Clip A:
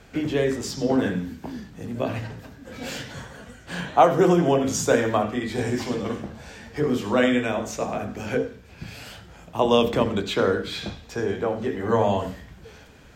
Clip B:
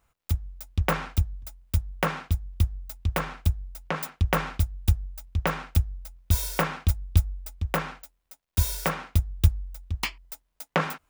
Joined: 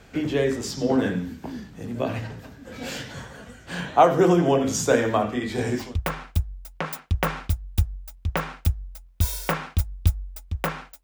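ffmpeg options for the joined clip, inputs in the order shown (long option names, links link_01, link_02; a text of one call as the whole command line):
ffmpeg -i cue0.wav -i cue1.wav -filter_complex "[0:a]apad=whole_dur=11.03,atrim=end=11.03,atrim=end=5.97,asetpts=PTS-STARTPTS[link_01];[1:a]atrim=start=2.83:end=8.13,asetpts=PTS-STARTPTS[link_02];[link_01][link_02]acrossfade=duration=0.24:curve1=tri:curve2=tri" out.wav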